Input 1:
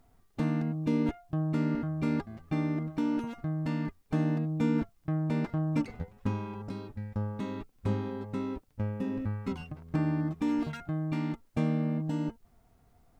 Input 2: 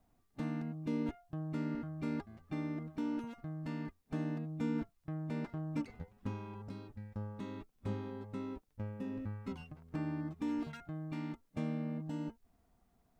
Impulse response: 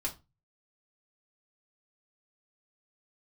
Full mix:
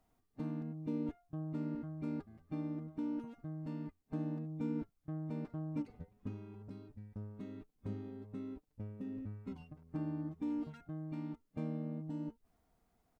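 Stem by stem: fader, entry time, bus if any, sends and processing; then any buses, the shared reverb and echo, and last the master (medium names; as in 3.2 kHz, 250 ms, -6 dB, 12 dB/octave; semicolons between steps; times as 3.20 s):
-12.0 dB, 0.00 s, no send, high-pass 310 Hz 12 dB/octave; comb 6.4 ms, depth 48%
-4.5 dB, 0.00 s, polarity flipped, no send, none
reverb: none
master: none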